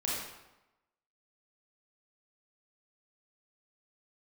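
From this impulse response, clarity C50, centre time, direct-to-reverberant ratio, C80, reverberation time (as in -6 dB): -1.5 dB, 77 ms, -6.0 dB, 2.0 dB, 0.95 s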